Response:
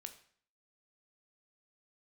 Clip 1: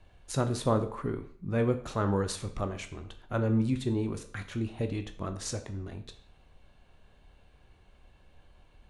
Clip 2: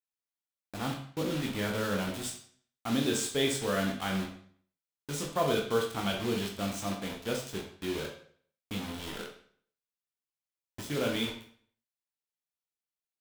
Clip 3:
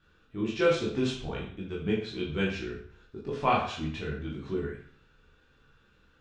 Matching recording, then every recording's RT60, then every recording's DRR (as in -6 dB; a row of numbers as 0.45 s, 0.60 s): 1; 0.55 s, 0.55 s, 0.55 s; 7.0 dB, 0.0 dB, -5.0 dB